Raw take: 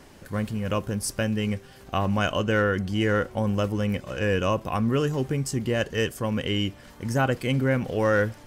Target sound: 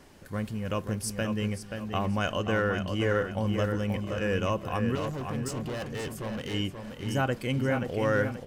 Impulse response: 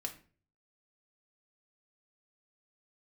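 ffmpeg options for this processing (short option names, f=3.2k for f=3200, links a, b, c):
-filter_complex "[0:a]asettb=1/sr,asplit=3[a][b][c];[a]atrim=end=4.954[d];[b]atrim=start=4.95:end=6.54,asetpts=PTS-STARTPTS,afade=t=in:d=0.004:c=qsin,afade=t=out:st=1.586:d=0.004:c=qsin,asoftclip=type=hard:threshold=-28dB[e];[c]atrim=start=6.536[f];[d][e]acrossfade=d=0.004:c1=hsin:c2=qsin[g];[g][f]acrossfade=d=0.004:c1=qsin:c2=hsin,asplit=2[h][i];[i]adelay=530,lowpass=f=4.7k:p=1,volume=-6dB,asplit=2[j][k];[k]adelay=530,lowpass=f=4.7k:p=1,volume=0.37,asplit=2[l][m];[m]adelay=530,lowpass=f=4.7k:p=1,volume=0.37,asplit=2[n][o];[o]adelay=530,lowpass=f=4.7k:p=1,volume=0.37[p];[j][l][n][p]amix=inputs=4:normalize=0[q];[h][q]amix=inputs=2:normalize=0,volume=-4.5dB"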